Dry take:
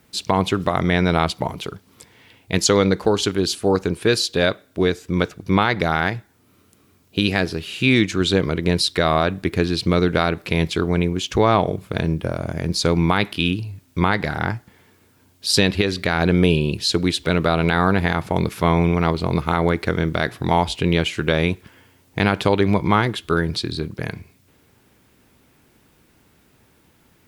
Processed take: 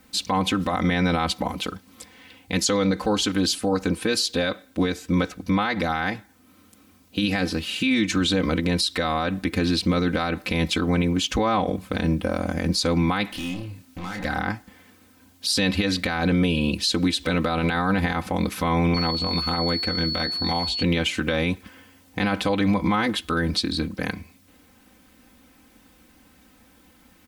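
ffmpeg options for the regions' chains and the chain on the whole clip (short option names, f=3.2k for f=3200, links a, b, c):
-filter_complex "[0:a]asettb=1/sr,asplit=3[a][b][c];[a]atrim=end=13.304[d];[b]atrim=start=13.3:end=14.25,asetpts=PTS-STARTPTS,afade=t=in:d=0.004:c=qsin,afade=t=out:st=0.946:d=0.004:c=qsin,acompressor=threshold=-23dB:ratio=10:attack=3.2:release=140:knee=1:detection=peak,volume=30.5dB,asoftclip=hard,volume=-30.5dB,asplit=2[e][f];[f]adelay=27,volume=-5dB[g];[e][g]amix=inputs=2:normalize=0,atrim=end_sample=41895[h];[c]atrim=start=14.246[i];[d][h]acrossfade=d=0.004:c1=hsin:c2=qsin[j];[j][i]acrossfade=d=0.004:c1=qsin:c2=hsin,asettb=1/sr,asplit=3[k][l][m];[k]atrim=end=18.944[n];[l]atrim=start=18.94:end=20.83,asetpts=PTS-STARTPTS,afade=t=in:d=0.004:c=qsin,afade=t=out:st=1.886:d=0.004:c=qsin,acrossover=split=1200|6800[o][p][q];[o]acompressor=threshold=-25dB:ratio=4[r];[p]acompressor=threshold=-34dB:ratio=4[s];[q]acompressor=threshold=-52dB:ratio=4[t];[r][s][t]amix=inputs=3:normalize=0,aeval=exprs='val(0)+0.0251*sin(2*PI*4400*n/s)':c=same,asplit=2[u][v];[v]adelay=12,volume=-7.5dB[w];[u][w]amix=inputs=2:normalize=0,atrim=end_sample=83349[x];[m]atrim=start=20.826[y];[n][x]acrossfade=d=0.004:c1=hsin:c2=qsin[z];[z][y]acrossfade=d=0.004:c1=qsin:c2=hsin,equalizer=f=450:w=6:g=-4.5,aecho=1:1:3.9:0.89,alimiter=limit=-13dB:level=0:latency=1:release=74"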